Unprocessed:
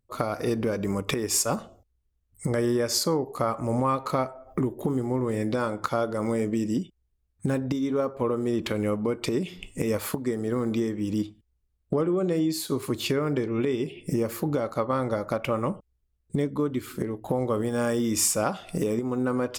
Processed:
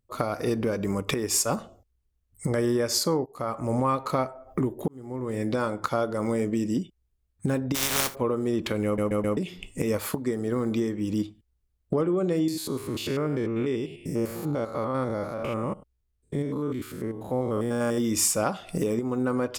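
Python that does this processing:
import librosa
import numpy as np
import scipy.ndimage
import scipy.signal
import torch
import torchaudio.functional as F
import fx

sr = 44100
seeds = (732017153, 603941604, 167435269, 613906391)

y = fx.spec_flatten(x, sr, power=0.19, at=(7.74, 8.14), fade=0.02)
y = fx.spec_steps(y, sr, hold_ms=100, at=(12.48, 17.98))
y = fx.edit(y, sr, fx.fade_in_from(start_s=3.26, length_s=0.52, curve='qsin', floor_db=-19.0),
    fx.fade_in_span(start_s=4.88, length_s=0.61),
    fx.stutter_over(start_s=8.85, slice_s=0.13, count=4), tone=tone)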